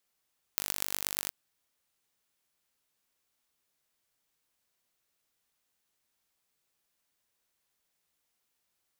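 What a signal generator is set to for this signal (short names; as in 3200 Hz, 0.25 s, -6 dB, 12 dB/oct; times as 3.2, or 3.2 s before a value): pulse train 49.2/s, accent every 6, -1.5 dBFS 0.72 s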